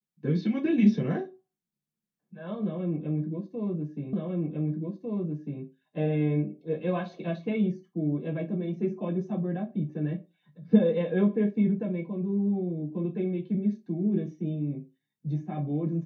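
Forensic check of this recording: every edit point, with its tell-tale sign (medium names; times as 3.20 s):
4.13 s: repeat of the last 1.5 s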